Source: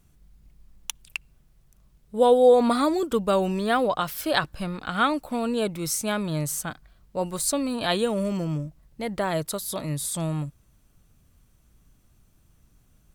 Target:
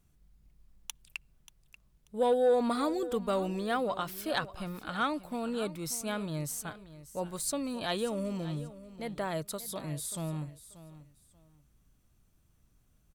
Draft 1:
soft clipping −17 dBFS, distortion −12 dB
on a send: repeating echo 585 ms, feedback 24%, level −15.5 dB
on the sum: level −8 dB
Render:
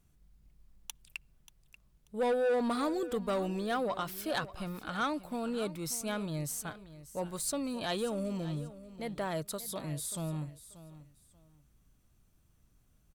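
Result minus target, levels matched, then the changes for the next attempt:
soft clipping: distortion +11 dB
change: soft clipping −8.5 dBFS, distortion −23 dB

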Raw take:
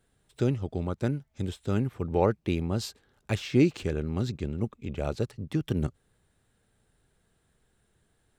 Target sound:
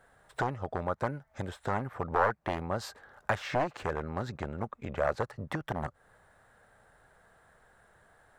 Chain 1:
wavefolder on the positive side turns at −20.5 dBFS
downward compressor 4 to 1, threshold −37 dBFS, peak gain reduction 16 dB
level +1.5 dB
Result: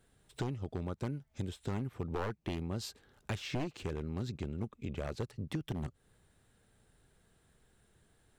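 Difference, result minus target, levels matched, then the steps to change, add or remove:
1,000 Hz band −9.0 dB
add after downward compressor: flat-topped bell 1,000 Hz +14.5 dB 2.2 octaves

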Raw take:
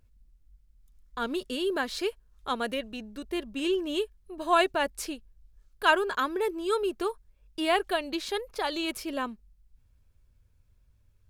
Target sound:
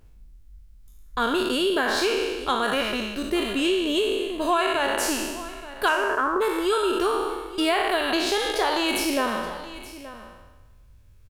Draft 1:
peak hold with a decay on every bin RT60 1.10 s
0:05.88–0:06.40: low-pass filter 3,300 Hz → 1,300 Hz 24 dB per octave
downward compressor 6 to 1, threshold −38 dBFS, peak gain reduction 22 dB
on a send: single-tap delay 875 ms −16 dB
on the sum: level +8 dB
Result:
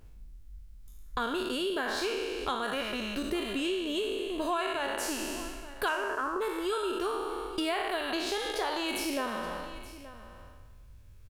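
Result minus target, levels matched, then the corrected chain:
downward compressor: peak gain reduction +9 dB
peak hold with a decay on every bin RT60 1.10 s
0:05.88–0:06.40: low-pass filter 3,300 Hz → 1,300 Hz 24 dB per octave
downward compressor 6 to 1, threshold −27.5 dBFS, peak gain reduction 13 dB
on a send: single-tap delay 875 ms −16 dB
on the sum: level +8 dB

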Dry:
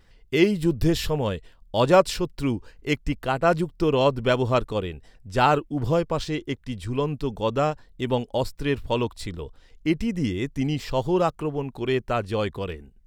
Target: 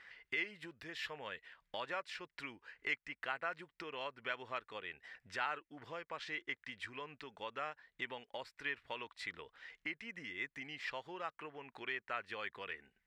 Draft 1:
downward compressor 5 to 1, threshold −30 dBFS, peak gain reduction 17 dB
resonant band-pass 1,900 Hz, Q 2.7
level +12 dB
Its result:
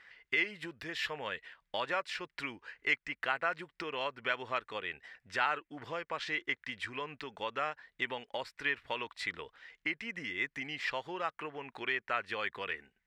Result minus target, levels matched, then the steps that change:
downward compressor: peak gain reduction −7 dB
change: downward compressor 5 to 1, threshold −39 dBFS, peak gain reduction 24 dB

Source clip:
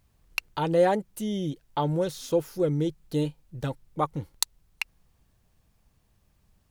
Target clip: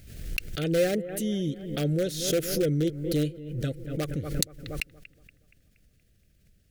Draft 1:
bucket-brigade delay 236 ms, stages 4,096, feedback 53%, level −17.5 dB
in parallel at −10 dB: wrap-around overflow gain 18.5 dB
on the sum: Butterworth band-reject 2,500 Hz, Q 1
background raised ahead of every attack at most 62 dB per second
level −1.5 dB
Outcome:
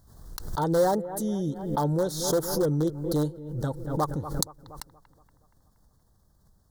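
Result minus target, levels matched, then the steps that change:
1,000 Hz band +13.0 dB
change: Butterworth band-reject 950 Hz, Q 1

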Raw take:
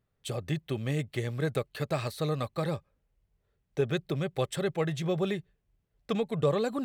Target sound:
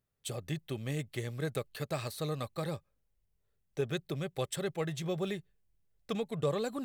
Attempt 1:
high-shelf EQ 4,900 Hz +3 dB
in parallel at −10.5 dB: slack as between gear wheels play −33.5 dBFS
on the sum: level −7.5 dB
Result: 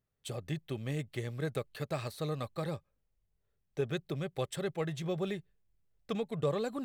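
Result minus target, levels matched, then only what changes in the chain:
8,000 Hz band −4.5 dB
change: high-shelf EQ 4,900 Hz +9.5 dB

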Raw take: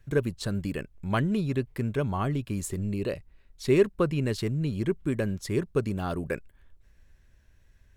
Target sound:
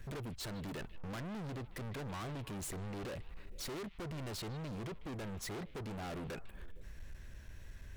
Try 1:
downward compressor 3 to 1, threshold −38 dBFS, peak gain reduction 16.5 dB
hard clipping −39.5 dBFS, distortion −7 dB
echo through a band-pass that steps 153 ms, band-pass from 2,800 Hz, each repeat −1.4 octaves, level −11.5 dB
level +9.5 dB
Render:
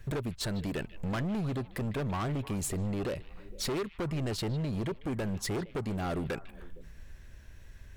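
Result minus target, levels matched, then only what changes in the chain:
hard clipping: distortion −5 dB
change: hard clipping −51 dBFS, distortion −2 dB

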